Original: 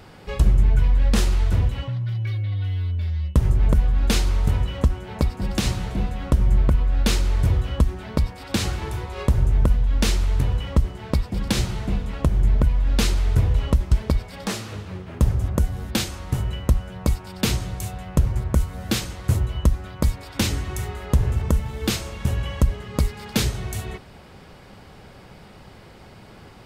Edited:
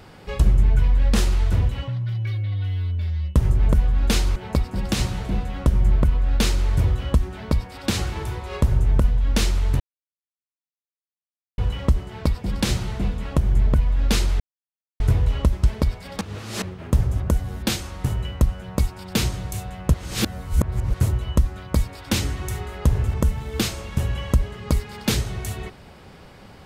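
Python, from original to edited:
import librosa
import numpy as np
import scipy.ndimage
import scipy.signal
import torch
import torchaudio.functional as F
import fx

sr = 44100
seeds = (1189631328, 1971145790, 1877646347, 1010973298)

y = fx.edit(x, sr, fx.cut(start_s=4.36, length_s=0.66),
    fx.insert_silence(at_s=10.46, length_s=1.78),
    fx.insert_silence(at_s=13.28, length_s=0.6),
    fx.reverse_span(start_s=14.49, length_s=0.41),
    fx.reverse_span(start_s=18.22, length_s=1.0), tone=tone)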